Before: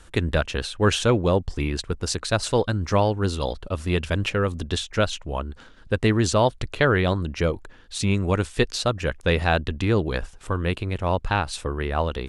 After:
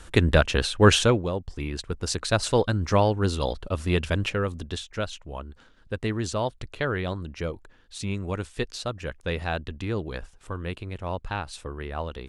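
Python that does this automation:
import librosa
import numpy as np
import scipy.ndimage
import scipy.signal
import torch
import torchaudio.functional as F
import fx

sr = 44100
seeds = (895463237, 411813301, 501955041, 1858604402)

y = fx.gain(x, sr, db=fx.line((0.98, 3.5), (1.32, -9.0), (2.26, -0.5), (4.07, -0.5), (4.89, -8.0)))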